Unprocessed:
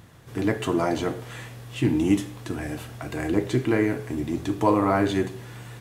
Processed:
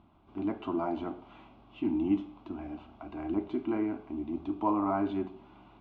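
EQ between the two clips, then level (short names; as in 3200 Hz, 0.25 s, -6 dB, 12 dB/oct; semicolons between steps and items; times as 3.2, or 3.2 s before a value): LPF 2700 Hz 24 dB/oct; dynamic EQ 1600 Hz, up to +4 dB, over -42 dBFS, Q 2.7; fixed phaser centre 480 Hz, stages 6; -6.0 dB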